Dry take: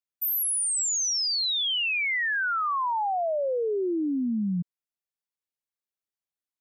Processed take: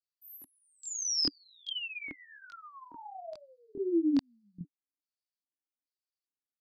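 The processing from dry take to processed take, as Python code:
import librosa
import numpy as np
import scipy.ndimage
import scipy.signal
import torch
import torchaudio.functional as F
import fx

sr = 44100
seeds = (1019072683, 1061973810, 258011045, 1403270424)

y = fx.filter_lfo_bandpass(x, sr, shape='square', hz=1.2, low_hz=290.0, high_hz=4600.0, q=6.3)
y = fx.chorus_voices(y, sr, voices=2, hz=1.2, base_ms=24, depth_ms=3.0, mix_pct=65)
y = y * librosa.db_to_amplitude(7.0)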